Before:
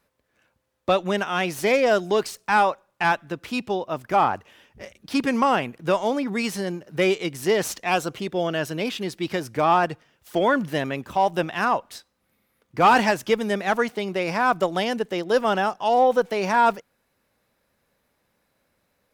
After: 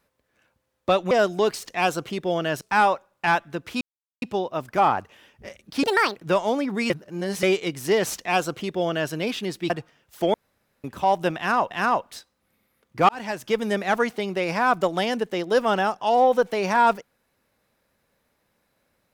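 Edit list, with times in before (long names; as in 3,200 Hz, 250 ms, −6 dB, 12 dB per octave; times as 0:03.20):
0:01.11–0:01.83: remove
0:03.58: splice in silence 0.41 s
0:05.19–0:05.74: play speed 167%
0:06.48–0:07.01: reverse
0:07.75–0:08.70: duplicate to 0:02.38
0:09.28–0:09.83: remove
0:10.47–0:10.97: fill with room tone
0:11.50–0:11.84: repeat, 2 plays
0:12.88–0:13.46: fade in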